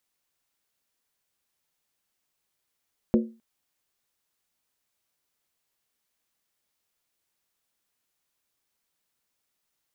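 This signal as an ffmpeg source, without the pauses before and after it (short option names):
-f lavfi -i "aevalsrc='0.188*pow(10,-3*t/0.33)*sin(2*PI*226*t)+0.106*pow(10,-3*t/0.261)*sin(2*PI*360.2*t)+0.0596*pow(10,-3*t/0.226)*sin(2*PI*482.7*t)+0.0335*pow(10,-3*t/0.218)*sin(2*PI*518.9*t)+0.0188*pow(10,-3*t/0.203)*sin(2*PI*599.6*t)':d=0.26:s=44100"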